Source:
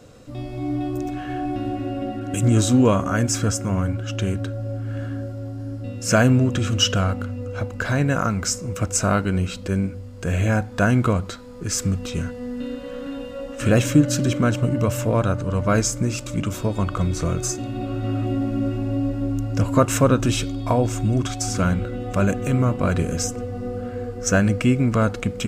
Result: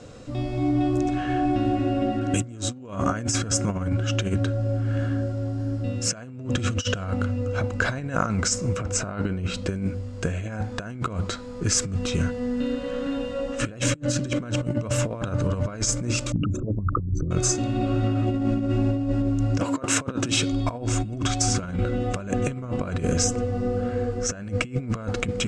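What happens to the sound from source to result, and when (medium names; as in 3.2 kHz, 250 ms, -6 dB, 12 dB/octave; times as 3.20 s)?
8.76–9.54 s: treble shelf 4.7 kHz -10 dB
16.32–17.31 s: resonances exaggerated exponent 3
19.59–20.51 s: high-pass 270 Hz -> 110 Hz
whole clip: low-pass 8.7 kHz 24 dB/octave; compressor with a negative ratio -24 dBFS, ratio -0.5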